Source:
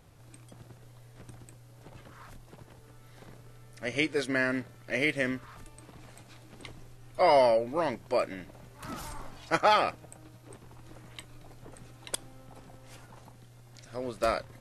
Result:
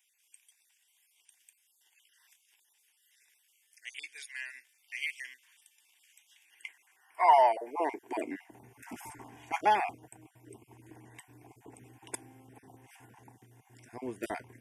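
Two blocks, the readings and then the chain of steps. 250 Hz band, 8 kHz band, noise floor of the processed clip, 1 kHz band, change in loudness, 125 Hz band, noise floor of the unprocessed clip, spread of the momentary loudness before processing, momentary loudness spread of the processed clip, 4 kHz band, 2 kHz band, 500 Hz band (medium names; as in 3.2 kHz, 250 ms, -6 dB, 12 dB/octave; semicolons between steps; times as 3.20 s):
-9.0 dB, -4.5 dB, -72 dBFS, +1.5 dB, -3.0 dB, under -10 dB, -54 dBFS, 24 LU, 24 LU, -9.0 dB, -6.5 dB, -7.0 dB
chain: random holes in the spectrogram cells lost 27%; static phaser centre 840 Hz, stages 8; high-pass sweep 3.6 kHz -> 150 Hz, 6.25–8.65 s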